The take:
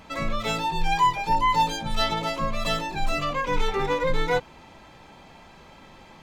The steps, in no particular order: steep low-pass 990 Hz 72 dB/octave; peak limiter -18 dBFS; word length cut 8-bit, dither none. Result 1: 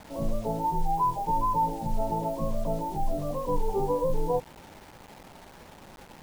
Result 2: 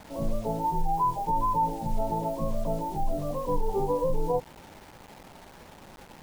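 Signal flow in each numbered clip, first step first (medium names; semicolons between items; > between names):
steep low-pass > peak limiter > word length cut; steep low-pass > word length cut > peak limiter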